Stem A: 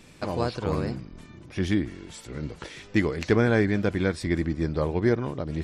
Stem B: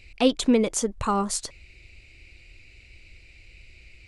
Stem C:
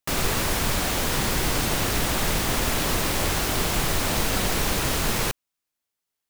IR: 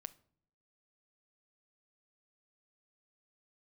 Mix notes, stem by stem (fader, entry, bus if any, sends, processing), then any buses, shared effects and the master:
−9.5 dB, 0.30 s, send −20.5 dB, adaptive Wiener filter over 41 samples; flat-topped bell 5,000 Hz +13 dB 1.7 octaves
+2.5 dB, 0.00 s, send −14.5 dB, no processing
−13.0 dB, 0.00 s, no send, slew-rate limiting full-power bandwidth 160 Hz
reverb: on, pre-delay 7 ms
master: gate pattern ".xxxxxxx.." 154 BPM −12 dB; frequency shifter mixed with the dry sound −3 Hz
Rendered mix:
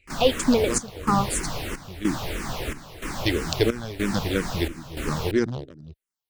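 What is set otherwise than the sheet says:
stem A −9.5 dB → +2.0 dB
stem C −13.0 dB → −3.0 dB

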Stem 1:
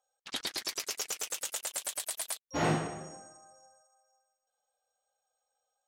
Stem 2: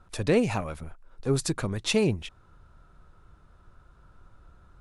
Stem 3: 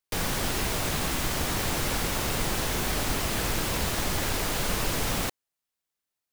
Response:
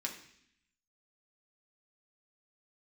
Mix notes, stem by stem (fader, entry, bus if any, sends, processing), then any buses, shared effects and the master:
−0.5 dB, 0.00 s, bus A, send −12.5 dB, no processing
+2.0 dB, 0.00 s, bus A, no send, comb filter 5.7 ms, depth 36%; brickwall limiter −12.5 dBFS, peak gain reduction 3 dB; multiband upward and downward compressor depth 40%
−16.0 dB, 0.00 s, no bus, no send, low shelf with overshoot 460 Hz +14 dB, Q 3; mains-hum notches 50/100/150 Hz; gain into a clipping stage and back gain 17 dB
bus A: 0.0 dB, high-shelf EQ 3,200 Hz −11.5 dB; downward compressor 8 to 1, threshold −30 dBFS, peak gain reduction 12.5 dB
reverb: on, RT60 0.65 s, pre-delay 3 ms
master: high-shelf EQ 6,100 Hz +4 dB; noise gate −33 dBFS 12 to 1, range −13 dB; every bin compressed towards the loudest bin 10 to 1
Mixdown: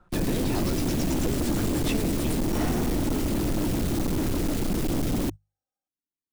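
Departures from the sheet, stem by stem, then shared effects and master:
stem 3 −16.0 dB → −6.0 dB
master: missing every bin compressed towards the loudest bin 10 to 1

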